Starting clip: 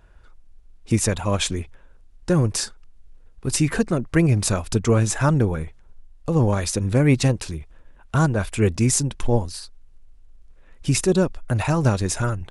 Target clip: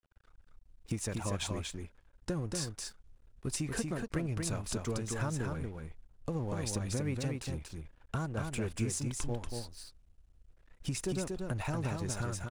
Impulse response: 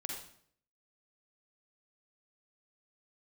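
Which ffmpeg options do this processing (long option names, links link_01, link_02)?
-filter_complex "[0:a]acompressor=threshold=-25dB:ratio=6,aeval=exprs='sgn(val(0))*max(abs(val(0))-0.00447,0)':channel_layout=same,asplit=2[link_01][link_02];[link_02]aecho=0:1:236:0.631[link_03];[link_01][link_03]amix=inputs=2:normalize=0,volume=-7dB"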